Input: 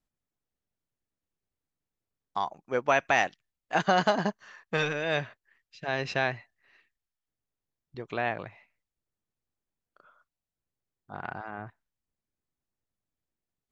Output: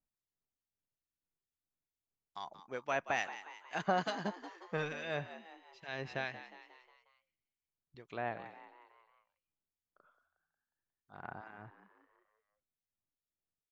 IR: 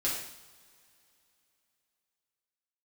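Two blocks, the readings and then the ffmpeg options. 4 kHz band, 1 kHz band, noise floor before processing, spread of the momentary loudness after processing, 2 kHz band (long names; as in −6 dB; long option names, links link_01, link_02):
−10.5 dB, −10.0 dB, below −85 dBFS, 20 LU, −10.5 dB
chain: -filter_complex "[0:a]acrossover=split=1700[link_01][link_02];[link_01]aeval=exprs='val(0)*(1-0.7/2+0.7/2*cos(2*PI*2.3*n/s))':channel_layout=same[link_03];[link_02]aeval=exprs='val(0)*(1-0.7/2-0.7/2*cos(2*PI*2.3*n/s))':channel_layout=same[link_04];[link_03][link_04]amix=inputs=2:normalize=0,asplit=6[link_05][link_06][link_07][link_08][link_09][link_10];[link_06]adelay=180,afreqshift=82,volume=-13dB[link_11];[link_07]adelay=360,afreqshift=164,volume=-18.5dB[link_12];[link_08]adelay=540,afreqshift=246,volume=-24dB[link_13];[link_09]adelay=720,afreqshift=328,volume=-29.5dB[link_14];[link_10]adelay=900,afreqshift=410,volume=-35.1dB[link_15];[link_05][link_11][link_12][link_13][link_14][link_15]amix=inputs=6:normalize=0,volume=-7dB"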